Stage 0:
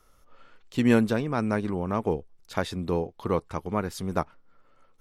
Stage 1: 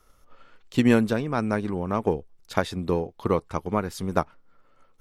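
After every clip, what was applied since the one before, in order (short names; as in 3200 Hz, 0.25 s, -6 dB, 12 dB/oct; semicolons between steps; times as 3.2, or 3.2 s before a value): transient shaper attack +5 dB, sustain +1 dB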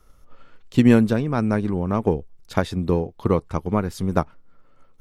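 low shelf 310 Hz +8 dB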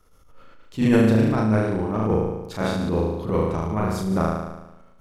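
flutter echo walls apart 6.3 m, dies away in 1 s; transient shaper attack -11 dB, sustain +2 dB; gain -2.5 dB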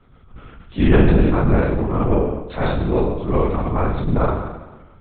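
LPC vocoder at 8 kHz whisper; gain +4.5 dB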